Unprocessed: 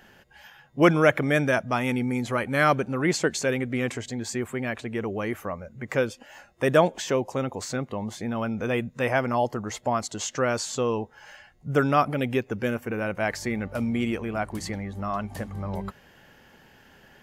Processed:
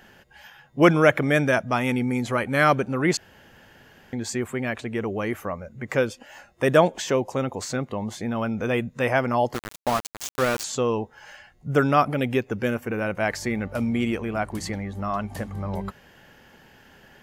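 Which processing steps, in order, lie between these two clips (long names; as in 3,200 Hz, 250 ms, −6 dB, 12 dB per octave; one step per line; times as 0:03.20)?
0:03.17–0:04.13: fill with room tone
0:09.54–0:10.64: centre clipping without the shift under −26 dBFS
level +2 dB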